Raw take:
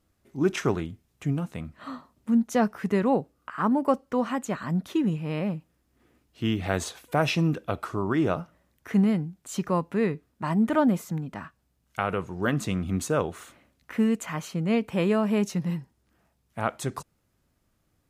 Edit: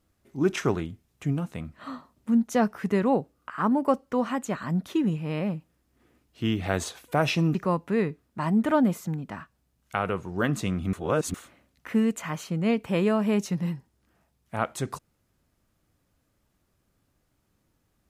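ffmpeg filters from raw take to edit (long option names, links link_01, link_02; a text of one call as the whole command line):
ffmpeg -i in.wav -filter_complex "[0:a]asplit=4[link_01][link_02][link_03][link_04];[link_01]atrim=end=7.552[link_05];[link_02]atrim=start=9.588:end=12.972[link_06];[link_03]atrim=start=12.968:end=13.382,asetpts=PTS-STARTPTS,areverse[link_07];[link_04]atrim=start=13.378[link_08];[link_05][link_06]acrossfade=duration=0.004:curve1=hsin:curve2=hsin[link_09];[link_09][link_07]acrossfade=duration=0.004:curve1=hsin:curve2=hsin[link_10];[link_10][link_08]acrossfade=duration=0.004:curve1=hsin:curve2=hsin" out.wav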